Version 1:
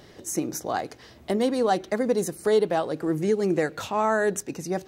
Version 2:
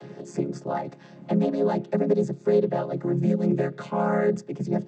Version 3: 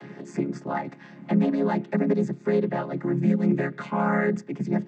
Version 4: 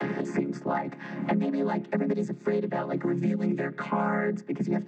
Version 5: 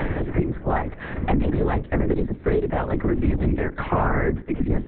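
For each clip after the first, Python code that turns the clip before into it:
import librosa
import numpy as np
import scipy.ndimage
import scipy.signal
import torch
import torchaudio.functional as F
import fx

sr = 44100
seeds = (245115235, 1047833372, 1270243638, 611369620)

y1 = fx.chord_vocoder(x, sr, chord='major triad', root=49)
y1 = fx.band_squash(y1, sr, depth_pct=40)
y1 = F.gain(torch.from_numpy(y1), 1.5).numpy()
y2 = fx.graphic_eq(y1, sr, hz=(250, 500, 1000, 2000), db=(9, -4, 5, 11))
y2 = F.gain(torch.from_numpy(y2), -4.0).numpy()
y3 = scipy.signal.sosfilt(scipy.signal.butter(2, 150.0, 'highpass', fs=sr, output='sos'), y2)
y3 = fx.band_squash(y3, sr, depth_pct=100)
y3 = F.gain(torch.from_numpy(y3), -3.5).numpy()
y4 = fx.lpc_vocoder(y3, sr, seeds[0], excitation='whisper', order=8)
y4 = F.gain(torch.from_numpy(y4), 6.0).numpy()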